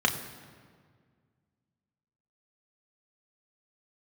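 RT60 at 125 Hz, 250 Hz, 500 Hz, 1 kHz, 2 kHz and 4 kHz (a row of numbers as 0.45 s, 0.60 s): 2.5 s, 2.3 s, 2.0 s, 1.7 s, 1.5 s, 1.3 s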